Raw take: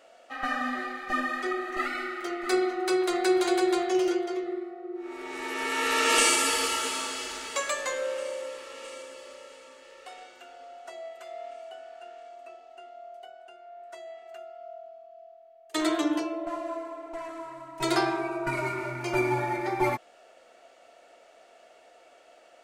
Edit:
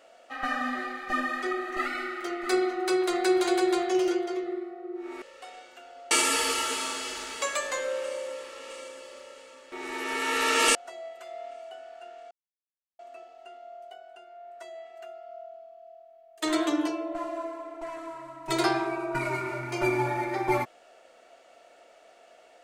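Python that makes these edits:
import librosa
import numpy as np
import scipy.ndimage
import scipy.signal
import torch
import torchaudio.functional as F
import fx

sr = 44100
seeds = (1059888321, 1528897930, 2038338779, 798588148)

y = fx.edit(x, sr, fx.swap(start_s=5.22, length_s=1.03, other_s=9.86, other_length_s=0.89),
    fx.insert_silence(at_s=12.31, length_s=0.68), tone=tone)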